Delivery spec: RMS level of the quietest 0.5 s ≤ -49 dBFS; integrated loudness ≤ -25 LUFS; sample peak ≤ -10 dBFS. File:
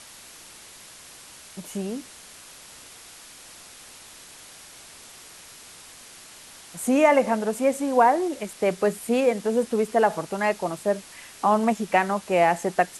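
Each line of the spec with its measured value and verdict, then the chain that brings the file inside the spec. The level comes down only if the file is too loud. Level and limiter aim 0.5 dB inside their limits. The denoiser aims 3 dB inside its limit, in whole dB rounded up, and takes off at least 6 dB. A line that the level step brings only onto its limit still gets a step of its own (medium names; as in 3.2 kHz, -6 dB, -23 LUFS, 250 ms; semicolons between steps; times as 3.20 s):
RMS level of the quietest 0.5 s -46 dBFS: fail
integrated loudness -23.5 LUFS: fail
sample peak -6.0 dBFS: fail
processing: noise reduction 6 dB, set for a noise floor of -46 dBFS; trim -2 dB; peak limiter -10.5 dBFS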